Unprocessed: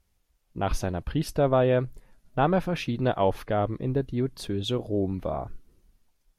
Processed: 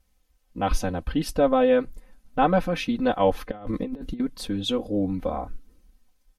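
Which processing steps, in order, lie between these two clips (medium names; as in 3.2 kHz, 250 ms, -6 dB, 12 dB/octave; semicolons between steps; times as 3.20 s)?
comb 3.9 ms, depth 96%; 3.51–4.20 s: compressor with a negative ratio -30 dBFS, ratio -0.5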